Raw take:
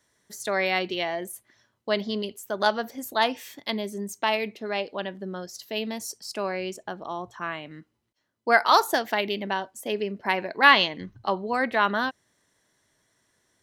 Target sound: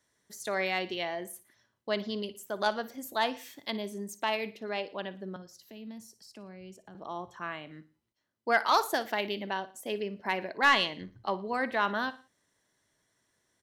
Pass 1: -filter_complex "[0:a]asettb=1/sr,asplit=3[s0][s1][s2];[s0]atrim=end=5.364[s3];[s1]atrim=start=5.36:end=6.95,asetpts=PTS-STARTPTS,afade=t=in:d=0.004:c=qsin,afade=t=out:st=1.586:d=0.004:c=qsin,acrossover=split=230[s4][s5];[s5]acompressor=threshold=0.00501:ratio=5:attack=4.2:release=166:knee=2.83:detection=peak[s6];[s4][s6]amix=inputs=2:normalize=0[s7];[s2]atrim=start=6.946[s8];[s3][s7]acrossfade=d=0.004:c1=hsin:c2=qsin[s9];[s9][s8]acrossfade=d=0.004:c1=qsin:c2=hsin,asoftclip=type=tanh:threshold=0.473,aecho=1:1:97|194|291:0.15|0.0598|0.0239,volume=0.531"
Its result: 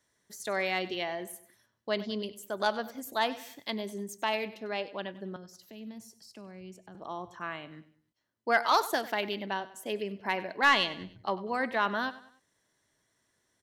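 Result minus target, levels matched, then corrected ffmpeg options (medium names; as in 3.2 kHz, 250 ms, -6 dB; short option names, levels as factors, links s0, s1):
echo 39 ms late
-filter_complex "[0:a]asettb=1/sr,asplit=3[s0][s1][s2];[s0]atrim=end=5.364[s3];[s1]atrim=start=5.36:end=6.95,asetpts=PTS-STARTPTS,afade=t=in:d=0.004:c=qsin,afade=t=out:st=1.586:d=0.004:c=qsin,acrossover=split=230[s4][s5];[s5]acompressor=threshold=0.00501:ratio=5:attack=4.2:release=166:knee=2.83:detection=peak[s6];[s4][s6]amix=inputs=2:normalize=0[s7];[s2]atrim=start=6.946[s8];[s3][s7]acrossfade=d=0.004:c1=hsin:c2=qsin[s9];[s9][s8]acrossfade=d=0.004:c1=qsin:c2=hsin,asoftclip=type=tanh:threshold=0.473,aecho=1:1:58|116|174:0.15|0.0598|0.0239,volume=0.531"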